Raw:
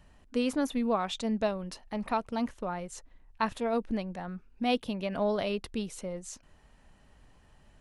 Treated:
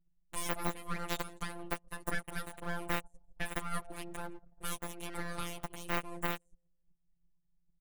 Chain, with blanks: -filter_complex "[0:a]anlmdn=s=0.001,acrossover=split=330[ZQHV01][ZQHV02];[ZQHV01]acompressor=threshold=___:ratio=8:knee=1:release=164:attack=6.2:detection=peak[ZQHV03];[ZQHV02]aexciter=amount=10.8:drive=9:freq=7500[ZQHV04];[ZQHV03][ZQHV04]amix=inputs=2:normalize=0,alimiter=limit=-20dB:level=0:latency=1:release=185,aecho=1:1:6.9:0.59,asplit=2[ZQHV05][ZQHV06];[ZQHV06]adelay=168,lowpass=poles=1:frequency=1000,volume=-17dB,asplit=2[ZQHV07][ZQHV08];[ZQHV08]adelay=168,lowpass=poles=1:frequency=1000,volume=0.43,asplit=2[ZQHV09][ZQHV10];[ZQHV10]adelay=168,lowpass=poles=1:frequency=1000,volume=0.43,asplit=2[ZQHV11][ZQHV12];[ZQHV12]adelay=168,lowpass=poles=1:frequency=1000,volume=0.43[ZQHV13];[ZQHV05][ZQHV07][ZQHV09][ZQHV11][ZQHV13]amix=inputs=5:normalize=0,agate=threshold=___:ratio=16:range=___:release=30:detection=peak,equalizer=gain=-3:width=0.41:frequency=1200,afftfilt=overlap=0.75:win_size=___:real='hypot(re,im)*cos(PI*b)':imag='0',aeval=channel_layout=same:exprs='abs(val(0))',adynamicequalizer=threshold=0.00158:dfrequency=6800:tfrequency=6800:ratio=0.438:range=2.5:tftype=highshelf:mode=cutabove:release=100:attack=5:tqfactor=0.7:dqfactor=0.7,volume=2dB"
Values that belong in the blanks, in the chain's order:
-46dB, -52dB, -14dB, 1024